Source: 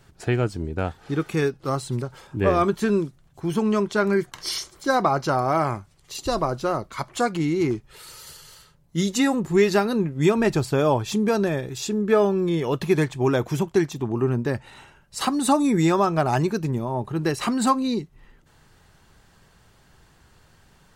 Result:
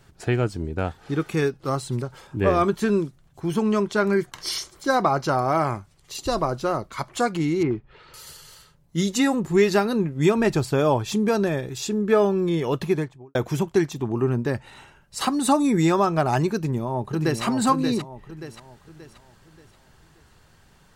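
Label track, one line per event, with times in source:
7.630000	8.140000	Bessel low-pass 2300 Hz, order 4
12.730000	13.350000	studio fade out
16.550000	17.430000	echo throw 0.58 s, feedback 40%, level -6 dB

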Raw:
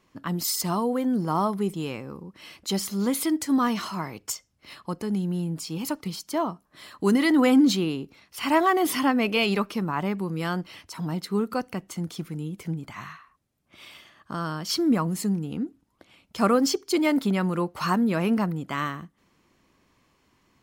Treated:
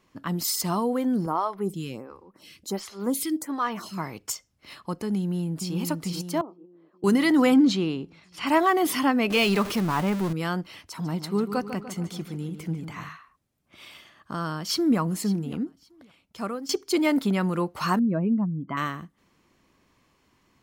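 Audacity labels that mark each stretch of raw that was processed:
1.260000	3.980000	photocell phaser 1.4 Hz
5.170000	5.770000	echo throw 0.44 s, feedback 60%, level -5 dB
6.410000	7.040000	ladder band-pass 410 Hz, resonance 55%
7.540000	8.470000	air absorption 69 m
9.300000	10.330000	zero-crossing step of -28.5 dBFS
10.860000	13.090000	darkening echo 0.147 s, feedback 55%, low-pass 4500 Hz, level -10 dB
14.540000	14.990000	echo throw 0.56 s, feedback 25%, level -17.5 dB
15.620000	16.690000	fade out, to -18 dB
17.990000	18.770000	spectral contrast raised exponent 2

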